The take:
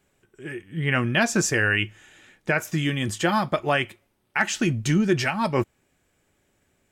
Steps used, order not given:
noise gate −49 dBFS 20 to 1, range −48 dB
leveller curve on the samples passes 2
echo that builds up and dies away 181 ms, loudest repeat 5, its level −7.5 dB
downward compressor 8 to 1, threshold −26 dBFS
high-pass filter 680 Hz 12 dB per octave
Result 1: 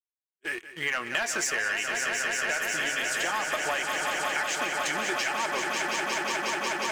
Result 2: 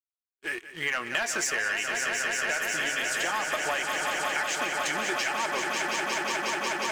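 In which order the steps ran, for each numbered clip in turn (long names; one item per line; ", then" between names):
high-pass filter, then noise gate, then leveller curve on the samples, then echo that builds up and dies away, then downward compressor
high-pass filter, then leveller curve on the samples, then noise gate, then echo that builds up and dies away, then downward compressor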